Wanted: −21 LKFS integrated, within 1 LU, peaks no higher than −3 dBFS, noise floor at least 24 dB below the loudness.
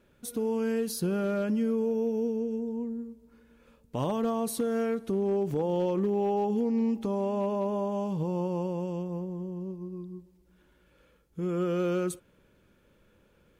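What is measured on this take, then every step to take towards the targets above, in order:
share of clipped samples 0.5%; peaks flattened at −21.5 dBFS; number of dropouts 1; longest dropout 1.8 ms; integrated loudness −30.0 LKFS; sample peak −21.5 dBFS; target loudness −21.0 LKFS
→ clipped peaks rebuilt −21.5 dBFS
repair the gap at 0:05.51, 1.8 ms
level +9 dB

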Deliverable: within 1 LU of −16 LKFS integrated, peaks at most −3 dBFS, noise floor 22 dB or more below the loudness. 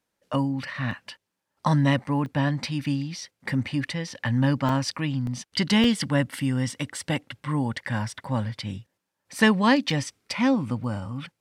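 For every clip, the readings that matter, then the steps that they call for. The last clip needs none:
number of dropouts 7; longest dropout 2.0 ms; integrated loudness −26.0 LKFS; sample peak −8.0 dBFS; target loudness −16.0 LKFS
→ repair the gap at 0:00.91/0:02.26/0:04.69/0:05.27/0:05.84/0:09.90/0:10.84, 2 ms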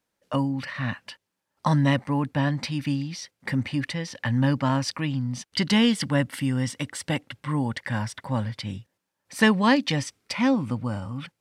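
number of dropouts 0; integrated loudness −26.0 LKFS; sample peak −8.0 dBFS; target loudness −16.0 LKFS
→ level +10 dB
brickwall limiter −3 dBFS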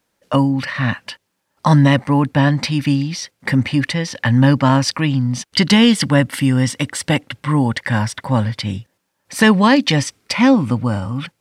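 integrated loudness −16.5 LKFS; sample peak −3.0 dBFS; background noise floor −72 dBFS

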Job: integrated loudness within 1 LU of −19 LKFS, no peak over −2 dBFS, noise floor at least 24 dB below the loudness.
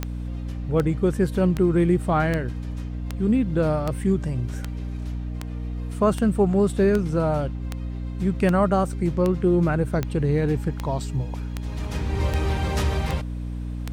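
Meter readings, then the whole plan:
number of clicks 19; mains hum 60 Hz; hum harmonics up to 300 Hz; level of the hum −27 dBFS; integrated loudness −24.0 LKFS; sample peak −8.5 dBFS; target loudness −19.0 LKFS
→ click removal
mains-hum notches 60/120/180/240/300 Hz
level +5 dB

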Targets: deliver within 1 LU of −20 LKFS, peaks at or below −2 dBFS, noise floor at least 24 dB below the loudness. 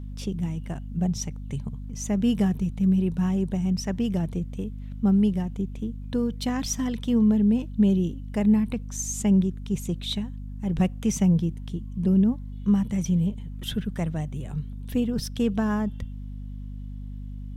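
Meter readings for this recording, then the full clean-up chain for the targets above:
mains hum 50 Hz; hum harmonics up to 250 Hz; level of the hum −33 dBFS; integrated loudness −26.0 LKFS; sample peak −11.0 dBFS; target loudness −20.0 LKFS
→ hum removal 50 Hz, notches 5
level +6 dB

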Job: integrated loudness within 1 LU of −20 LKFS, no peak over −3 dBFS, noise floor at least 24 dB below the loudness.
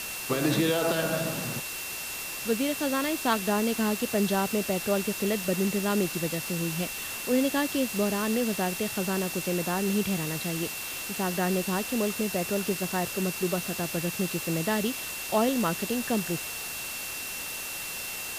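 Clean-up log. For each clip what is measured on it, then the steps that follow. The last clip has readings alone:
interfering tone 2,700 Hz; level of the tone −39 dBFS; background noise floor −36 dBFS; target noise floor −52 dBFS; integrated loudness −28.0 LKFS; sample peak −12.0 dBFS; target loudness −20.0 LKFS
→ notch filter 2,700 Hz, Q 30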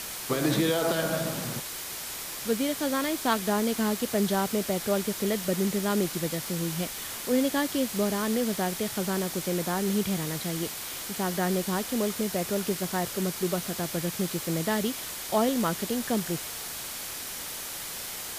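interfering tone none found; background noise floor −37 dBFS; target noise floor −53 dBFS
→ noise reduction from a noise print 16 dB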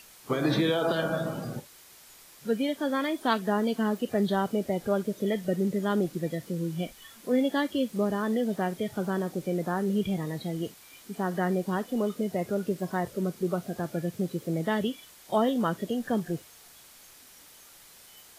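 background noise floor −53 dBFS; target noise floor −54 dBFS
→ noise reduction from a noise print 6 dB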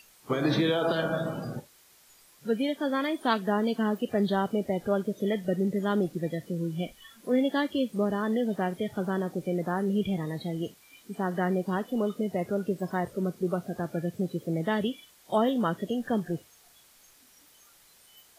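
background noise floor −59 dBFS; integrated loudness −29.5 LKFS; sample peak −13.0 dBFS; target loudness −20.0 LKFS
→ level +9.5 dB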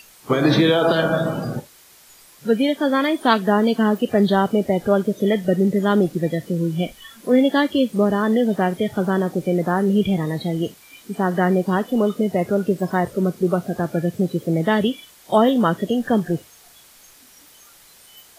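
integrated loudness −20.0 LKFS; sample peak −3.5 dBFS; background noise floor −49 dBFS

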